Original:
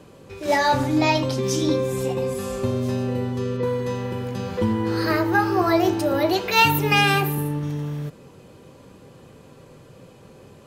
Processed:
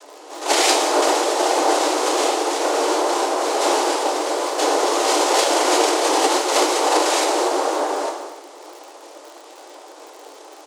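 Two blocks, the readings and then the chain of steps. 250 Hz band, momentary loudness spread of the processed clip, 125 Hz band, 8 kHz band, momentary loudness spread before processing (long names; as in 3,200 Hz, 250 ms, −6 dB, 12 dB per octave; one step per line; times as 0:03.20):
−2.5 dB, 6 LU, below −40 dB, +14.5 dB, 11 LU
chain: single-tap delay 236 ms −22 dB
downward compressor, threshold −20 dBFS, peak gain reduction 9 dB
sample-and-hold swept by an LFO 25×, swing 100% 2.9 Hz
cochlear-implant simulation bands 2
reverb whose tail is shaped and stops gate 350 ms falling, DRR 0 dB
surface crackle 59 per second −36 dBFS
Butterworth high-pass 300 Hz 96 dB per octave
level +4.5 dB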